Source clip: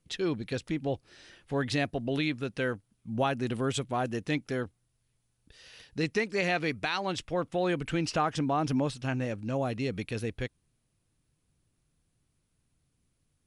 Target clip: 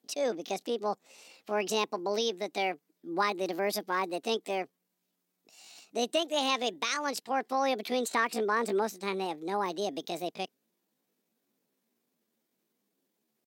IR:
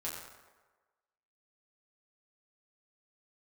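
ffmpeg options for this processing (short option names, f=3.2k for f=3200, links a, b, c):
-af "asetrate=66075,aresample=44100,atempo=0.66742,highpass=f=240:w=0.5412,highpass=f=240:w=1.3066"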